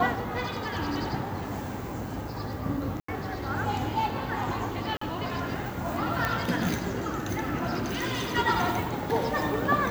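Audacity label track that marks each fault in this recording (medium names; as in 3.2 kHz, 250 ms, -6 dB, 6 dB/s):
3.000000	3.080000	dropout 84 ms
4.970000	5.010000	dropout 44 ms
6.250000	6.250000	pop
7.770000	8.370000	clipped -26 dBFS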